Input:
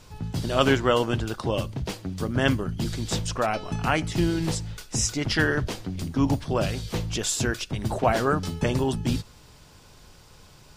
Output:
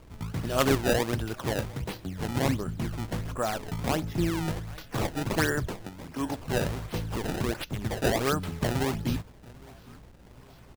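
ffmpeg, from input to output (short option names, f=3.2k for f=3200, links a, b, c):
-filter_complex "[0:a]asettb=1/sr,asplit=3[a][b][c];[a]atrim=end=5.874[d];[b]atrim=start=5.87:end=6.39,asetpts=PTS-STARTPTS,afade=t=in:d=0.004:c=qsin,afade=t=out:st=0.516:d=0.004:c=qsin,bass=f=250:g=-13,treble=f=4k:g=2[e];[c]atrim=start=6.386[f];[d][e]acrossfade=d=0.004:c1=hsin:c2=qsin[g];[g][f]acrossfade=d=0.004:c1=qsin:c2=hsin,asplit=2[h][i];[i]adelay=811,lowpass=f=4.5k:p=1,volume=-23.5dB,asplit=2[j][k];[k]adelay=811,lowpass=f=4.5k:p=1,volume=0.48,asplit=2[l][m];[m]adelay=811,lowpass=f=4.5k:p=1,volume=0.48[n];[h][j][l][n]amix=inputs=4:normalize=0,aeval=exprs='val(0)+0.00282*(sin(2*PI*60*n/s)+sin(2*PI*2*60*n/s)/2+sin(2*PI*3*60*n/s)/3+sin(2*PI*4*60*n/s)/4+sin(2*PI*5*60*n/s)/5)':c=same,asettb=1/sr,asplit=3[o][p][q];[o]atrim=end=2.874[r];[p]atrim=start=2.87:end=4.56,asetpts=PTS-STARTPTS,afade=t=in:d=0.004:c=qsin,afade=t=out:st=1.686:d=0.004:c=qsin,equalizer=f=7.2k:w=0.53:g=-14[s];[q]atrim=start=4.556[t];[r][s]acrossfade=d=0.004:c1=hsin:c2=qsin[u];[u][t]acrossfade=d=0.004:c1=qsin:c2=hsin,acrusher=samples=23:mix=1:aa=0.000001:lfo=1:lforange=36.8:lforate=1.4,volume=-3.5dB"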